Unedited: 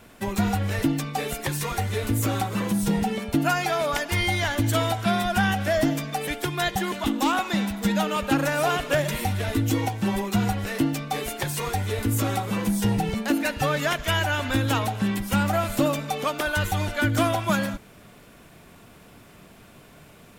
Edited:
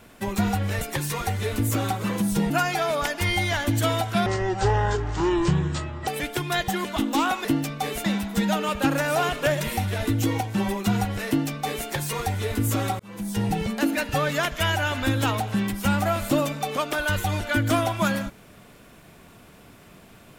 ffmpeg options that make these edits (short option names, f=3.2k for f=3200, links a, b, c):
-filter_complex "[0:a]asplit=8[a][b][c][d][e][f][g][h];[a]atrim=end=0.812[i];[b]atrim=start=1.318:end=3.012[j];[c]atrim=start=3.408:end=5.174[k];[d]atrim=start=5.17:end=6.15,asetpts=PTS-STARTPTS,asetrate=23814,aresample=44100,atrim=end_sample=80033,asetpts=PTS-STARTPTS[l];[e]atrim=start=6.146:end=7.522[m];[f]atrim=start=10.748:end=11.352[n];[g]atrim=start=7.518:end=12.47,asetpts=PTS-STARTPTS,afade=t=out:st=4.948:d=0.004:c=hsin[o];[h]atrim=start=12.47,asetpts=PTS-STARTPTS,afade=t=in:d=0.55[p];[i][j]acrossfade=d=0.004:c1=hsin:c2=hsin[q];[q][k]acrossfade=d=0.004:c1=hsin:c2=hsin[r];[r][l]acrossfade=d=0.004:c1=hsin:c2=hsin[s];[s][m]acrossfade=d=0.004:c1=hsin:c2=hsin[t];[t][n]acrossfade=d=0.004:c1=hsin:c2=hsin[u];[o][p]concat=n=2:v=0:a=1[v];[u][v]acrossfade=d=0.004:c1=hsin:c2=hsin"